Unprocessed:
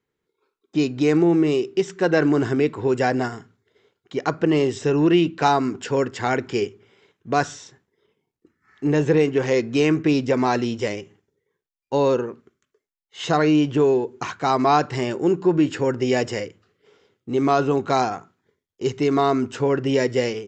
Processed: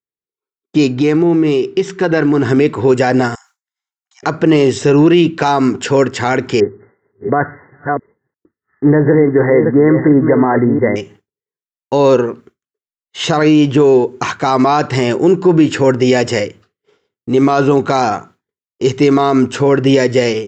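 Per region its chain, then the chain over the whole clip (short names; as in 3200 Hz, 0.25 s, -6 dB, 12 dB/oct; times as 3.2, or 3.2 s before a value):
0.94–2.49 notch 580 Hz, Q 7.7 + compressor 2.5:1, threshold -22 dBFS + air absorption 69 m
3.35–4.23 steep high-pass 750 Hz 96 dB/oct + resonant high shelf 4600 Hz +10 dB, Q 1.5 + compressor 2.5:1, threshold -55 dBFS
6.6–10.96 reverse delay 0.349 s, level -8.5 dB + brick-wall FIR low-pass 2100 Hz
whole clip: expander -46 dBFS; maximiser +12.5 dB; gain -1 dB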